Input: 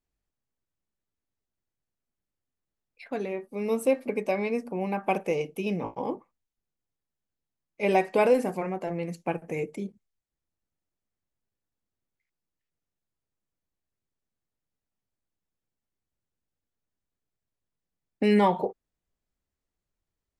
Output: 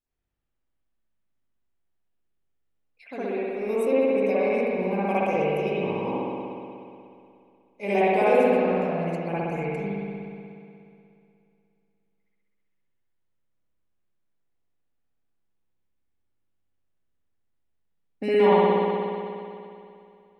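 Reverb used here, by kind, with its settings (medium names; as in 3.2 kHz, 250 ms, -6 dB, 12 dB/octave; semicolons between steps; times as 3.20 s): spring tank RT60 2.6 s, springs 60 ms, chirp 65 ms, DRR -10 dB; trim -6.5 dB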